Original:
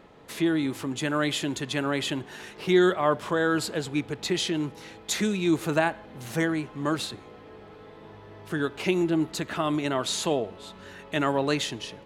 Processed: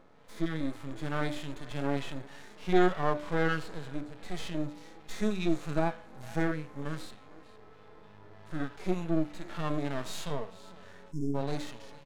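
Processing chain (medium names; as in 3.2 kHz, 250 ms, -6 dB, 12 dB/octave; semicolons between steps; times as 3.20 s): on a send: delay 454 ms -22 dB; on the sum: LFO notch square 3.3 Hz 350–2800 Hz; half-wave rectifier; spectral selection erased 11.12–11.35 s, 420–5100 Hz; treble shelf 9 kHz -7 dB; harmonic-percussive split percussive -18 dB; de-hum 99.09 Hz, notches 30; in parallel at -12 dB: saturation -24.5 dBFS, distortion -9 dB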